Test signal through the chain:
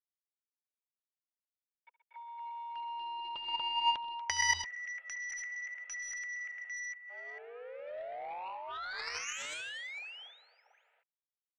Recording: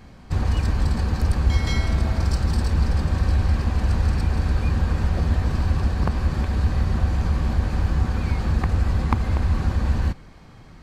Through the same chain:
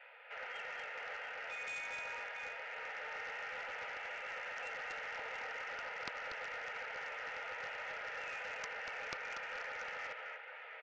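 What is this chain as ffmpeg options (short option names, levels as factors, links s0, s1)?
-af "aderivative,acompressor=threshold=0.00224:ratio=2,flanger=delay=2.9:depth=3.8:regen=82:speed=0.5:shape=sinusoidal,aresample=16000,aeval=exprs='0.0188*sin(PI/2*1.58*val(0)/0.0188)':c=same,aresample=44100,acrusher=bits=9:mix=0:aa=0.000001,highpass=f=170:t=q:w=0.5412,highpass=f=170:t=q:w=1.307,lowpass=f=2300:t=q:w=0.5176,lowpass=f=2300:t=q:w=0.7071,lowpass=f=2300:t=q:w=1.932,afreqshift=290,asuperstop=centerf=1100:order=8:qfactor=5.4,aecho=1:1:70|127|238|686:0.168|0.251|0.631|0.422,aeval=exprs='0.0237*(cos(1*acos(clip(val(0)/0.0237,-1,1)))-cos(1*PI/2))+0.000188*(cos(2*acos(clip(val(0)/0.0237,-1,1)))-cos(2*PI/2))+0.0106*(cos(3*acos(clip(val(0)/0.0237,-1,1)))-cos(3*PI/2))+0.000422*(cos(7*acos(clip(val(0)/0.0237,-1,1)))-cos(7*PI/2))':c=same,volume=6.68"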